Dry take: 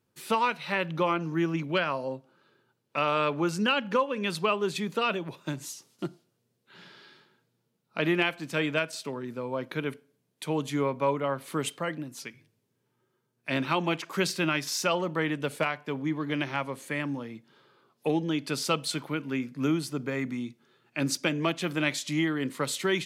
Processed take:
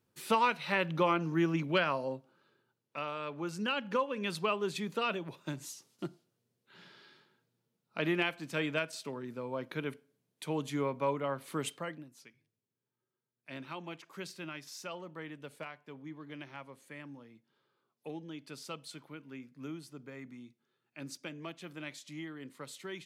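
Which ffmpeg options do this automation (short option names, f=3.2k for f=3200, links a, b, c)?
-af "volume=6.5dB,afade=t=out:st=1.87:d=1.32:silence=0.251189,afade=t=in:st=3.19:d=0.84:silence=0.375837,afade=t=out:st=11.71:d=0.41:silence=0.298538"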